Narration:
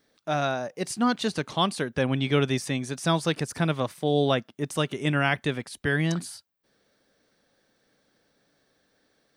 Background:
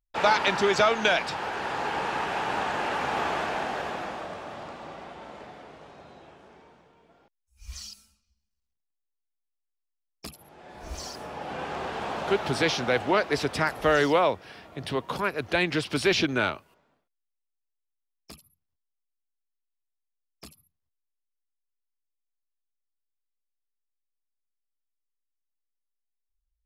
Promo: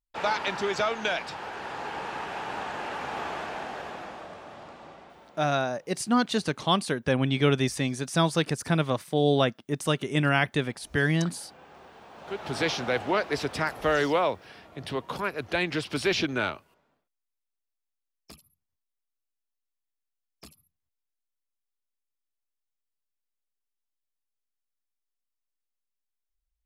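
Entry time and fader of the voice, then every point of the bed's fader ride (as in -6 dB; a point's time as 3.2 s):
5.10 s, +0.5 dB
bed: 4.86 s -5.5 dB
5.84 s -17.5 dB
12.1 s -17.5 dB
12.59 s -2.5 dB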